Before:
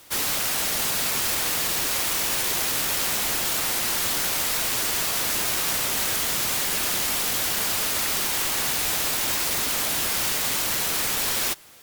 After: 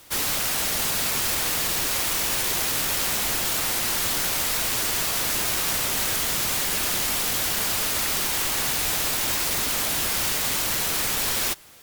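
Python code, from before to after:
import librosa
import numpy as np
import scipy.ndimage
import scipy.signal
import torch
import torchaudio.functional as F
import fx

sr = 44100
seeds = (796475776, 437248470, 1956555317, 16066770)

y = fx.low_shelf(x, sr, hz=110.0, db=5.5)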